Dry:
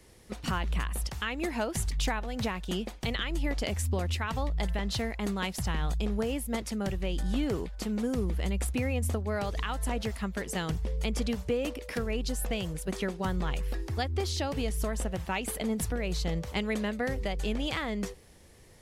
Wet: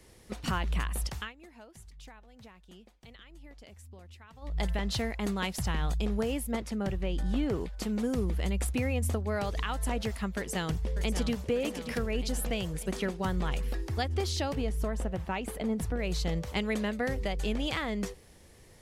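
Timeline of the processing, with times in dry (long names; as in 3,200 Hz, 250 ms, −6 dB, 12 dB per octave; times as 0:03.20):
0:01.15–0:04.59: duck −20.5 dB, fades 0.18 s
0:06.51–0:07.61: high-shelf EQ 3,500 Hz −8 dB
0:10.37–0:11.33: delay throw 590 ms, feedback 60%, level −9.5 dB
0:14.55–0:15.99: high-shelf EQ 2,400 Hz −9.5 dB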